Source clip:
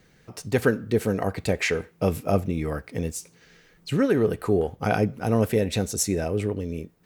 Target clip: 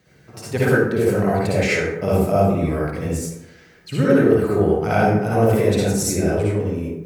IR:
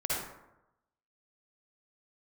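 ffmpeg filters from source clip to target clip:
-filter_complex "[0:a]highpass=60[s0];[1:a]atrim=start_sample=2205[s1];[s0][s1]afir=irnorm=-1:irlink=0,volume=0.891"

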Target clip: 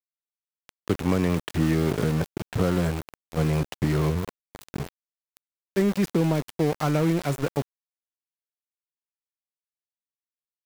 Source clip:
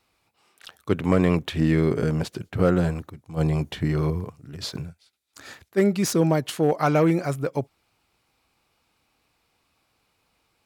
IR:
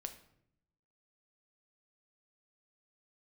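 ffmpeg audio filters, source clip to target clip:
-filter_complex "[0:a]acrossover=split=280|2500[s0][s1][s2];[s0]acompressor=threshold=0.0631:ratio=4[s3];[s1]acompressor=threshold=0.0355:ratio=4[s4];[s2]acompressor=threshold=0.00447:ratio=4[s5];[s3][s4][s5]amix=inputs=3:normalize=0,aeval=exprs='val(0)*gte(abs(val(0)),0.0299)':c=same,volume=1.33"

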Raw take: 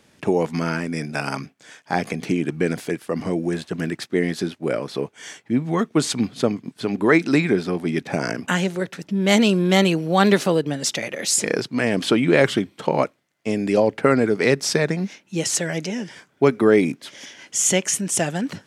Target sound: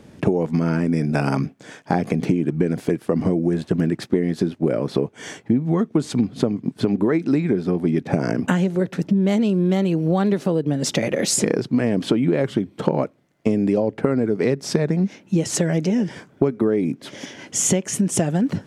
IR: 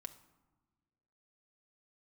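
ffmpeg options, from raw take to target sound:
-af "tiltshelf=f=800:g=7.5,acompressor=threshold=0.0708:ratio=12,volume=2.37"

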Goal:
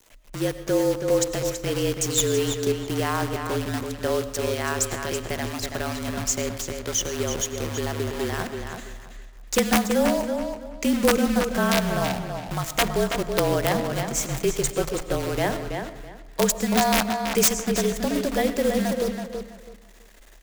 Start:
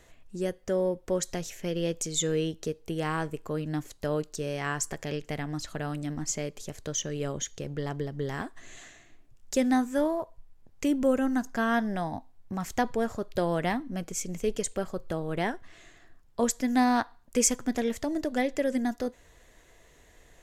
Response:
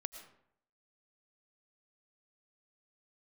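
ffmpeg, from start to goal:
-filter_complex "[0:a]adynamicequalizer=threshold=0.00447:dfrequency=1800:dqfactor=1.1:tfrequency=1800:tqfactor=1.1:attack=5:release=100:ratio=0.375:range=4:mode=cutabove:tftype=bell,acrusher=bits=7:dc=4:mix=0:aa=0.000001,bandreject=f=50:t=h:w=6,bandreject=f=100:t=h:w=6,bandreject=f=150:t=h:w=6,bandreject=f=200:t=h:w=6,bandreject=f=250:t=h:w=6,bandreject=f=300:t=h:w=6,bandreject=f=350:t=h:w=6,asplit=2[s0][s1];[1:a]atrim=start_sample=2205[s2];[s1][s2]afir=irnorm=-1:irlink=0,volume=2[s3];[s0][s3]amix=inputs=2:normalize=0,afreqshift=-37,lowshelf=f=320:g=-4,aeval=exprs='(mod(2.99*val(0)+1,2)-1)/2.99':c=same,asplit=2[s4][s5];[s5]adelay=328,lowpass=f=4900:p=1,volume=0.501,asplit=2[s6][s7];[s7]adelay=328,lowpass=f=4900:p=1,volume=0.23,asplit=2[s8][s9];[s9]adelay=328,lowpass=f=4900:p=1,volume=0.23[s10];[s6][s8][s10]amix=inputs=3:normalize=0[s11];[s4][s11]amix=inputs=2:normalize=0,volume=0.891"

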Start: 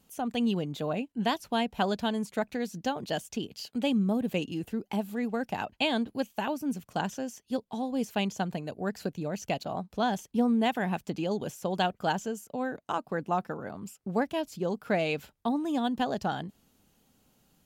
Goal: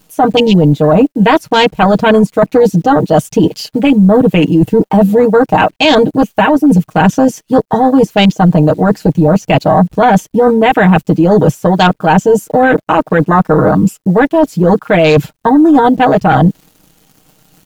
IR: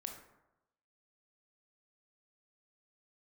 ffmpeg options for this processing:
-af "afwtdn=0.0126,aecho=1:1:6.4:0.87,areverse,acompressor=threshold=0.02:ratio=16,areverse,apsyclip=50.1,acrusher=bits=8:dc=4:mix=0:aa=0.000001,volume=0.794"

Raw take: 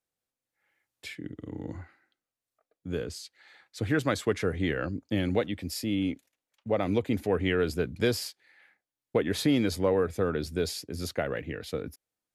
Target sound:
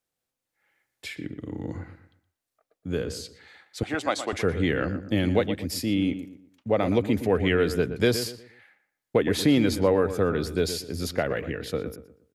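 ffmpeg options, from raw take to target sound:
-filter_complex "[0:a]asettb=1/sr,asplit=3[s0][s1][s2];[s0]atrim=end=3.834[s3];[s1]atrim=start=3.83:end=4.33,asetpts=PTS-STARTPTS,afade=t=in:d=0.004:c=qsin,afade=t=out:st=0.496:d=0.004:c=qsin,highpass=420,equalizer=f=450:t=q:w=4:g=-8,equalizer=f=750:t=q:w=4:g=7,equalizer=f=1700:t=q:w=4:g=-7,lowpass=f=9700:w=0.5412,lowpass=f=9700:w=1.3066[s4];[s2]atrim=start=4.326[s5];[s3][s4]acrossfade=d=0.004:c1=hsin:c2=qsin[s6];[s6][s5]acrossfade=d=0.004:c1=qsin:c2=hsin,asplit=2[s7][s8];[s8]adelay=119,lowpass=f=2000:p=1,volume=0.299,asplit=2[s9][s10];[s10]adelay=119,lowpass=f=2000:p=1,volume=0.34,asplit=2[s11][s12];[s12]adelay=119,lowpass=f=2000:p=1,volume=0.34,asplit=2[s13][s14];[s14]adelay=119,lowpass=f=2000:p=1,volume=0.34[s15];[s7][s9][s11][s13][s15]amix=inputs=5:normalize=0,volume=1.58"

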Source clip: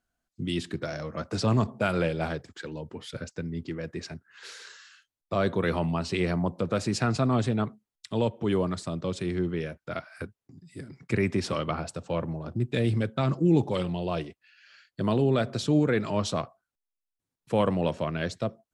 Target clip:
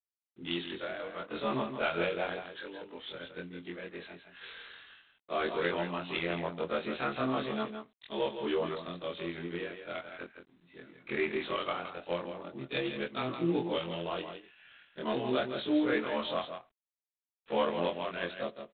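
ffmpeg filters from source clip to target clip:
-filter_complex "[0:a]afftfilt=real='re':imag='-im':win_size=2048:overlap=0.75,highpass=320,acrusher=bits=7:mode=log:mix=0:aa=0.000001,crystalizer=i=3:c=0,asplit=2[s0][s1];[s1]aecho=0:1:165:0.376[s2];[s0][s2]amix=inputs=2:normalize=0" -ar 8000 -c:a adpcm_g726 -b:a 24k

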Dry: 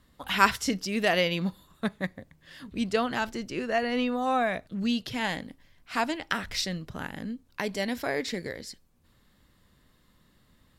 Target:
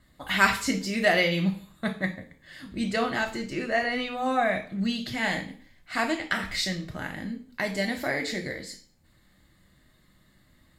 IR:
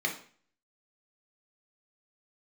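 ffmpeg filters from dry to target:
-filter_complex "[0:a]asplit=2[s0][s1];[1:a]atrim=start_sample=2205,highshelf=f=3500:g=11[s2];[s1][s2]afir=irnorm=-1:irlink=0,volume=0.355[s3];[s0][s3]amix=inputs=2:normalize=0"

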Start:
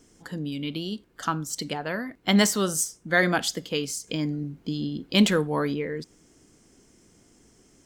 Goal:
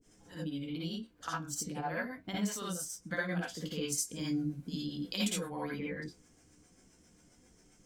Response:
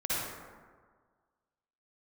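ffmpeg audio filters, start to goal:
-filter_complex "[0:a]asettb=1/sr,asplit=3[s0][s1][s2];[s0]atrim=end=3.924[s3];[s1]atrim=start=3.92:end=5.4,asetpts=PTS-STARTPTS,afade=t=in:d=0.004:c=qsin,afade=t=out:st=1.476:d=0.004:c=qsin,equalizer=f=10000:w=0.52:g=13[s4];[s2]atrim=start=5.396[s5];[s3][s4]acrossfade=d=0.004:c1=hsin:c2=qsin[s6];[s6][s5]acrossfade=d=0.004:c1=qsin:c2=hsin,acompressor=threshold=0.0447:ratio=6,acrossover=split=420[s7][s8];[s7]aeval=exprs='val(0)*(1-1/2+1/2*cos(2*PI*7.5*n/s))':c=same[s9];[s8]aeval=exprs='val(0)*(1-1/2-1/2*cos(2*PI*7.5*n/s))':c=same[s10];[s9][s10]amix=inputs=2:normalize=0,flanger=delay=9.3:depth=4.6:regen=64:speed=0.37:shape=sinusoidal[s11];[1:a]atrim=start_sample=2205,atrim=end_sample=3969[s12];[s11][s12]afir=irnorm=-1:irlink=0"

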